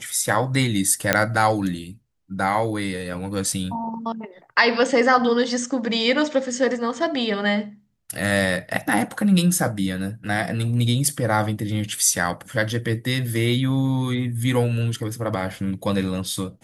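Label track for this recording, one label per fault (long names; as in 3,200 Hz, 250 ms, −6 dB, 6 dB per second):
1.130000	1.130000	click −1 dBFS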